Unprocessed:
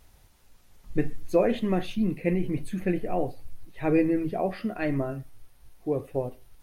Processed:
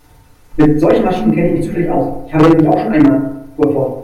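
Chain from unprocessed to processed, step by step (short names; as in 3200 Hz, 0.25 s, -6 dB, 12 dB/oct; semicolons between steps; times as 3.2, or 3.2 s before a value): notches 60/120/180/240/300/360/420/480 Hz; granular stretch 0.61×, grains 0.102 s; FDN reverb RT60 0.8 s, low-frequency decay 1×, high-frequency decay 0.25×, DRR -7 dB; wavefolder -9 dBFS; gain +8 dB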